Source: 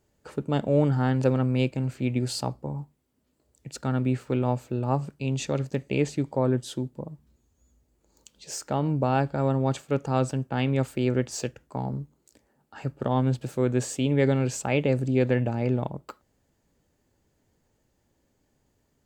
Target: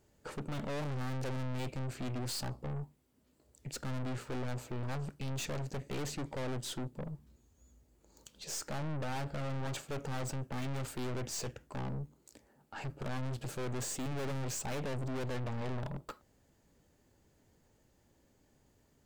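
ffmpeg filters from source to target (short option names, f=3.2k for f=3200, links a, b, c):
-af "aeval=exprs='(tanh(89.1*val(0)+0.4)-tanh(0.4))/89.1':c=same,volume=2.5dB"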